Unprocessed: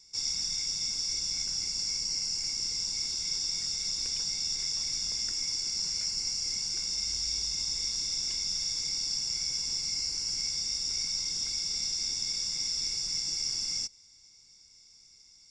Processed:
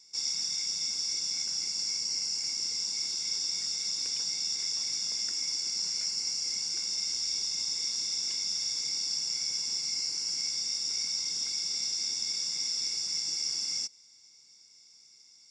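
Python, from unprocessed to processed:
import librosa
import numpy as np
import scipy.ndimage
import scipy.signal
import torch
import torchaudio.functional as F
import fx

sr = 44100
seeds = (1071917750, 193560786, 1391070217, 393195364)

y = scipy.signal.sosfilt(scipy.signal.bessel(2, 230.0, 'highpass', norm='mag', fs=sr, output='sos'), x)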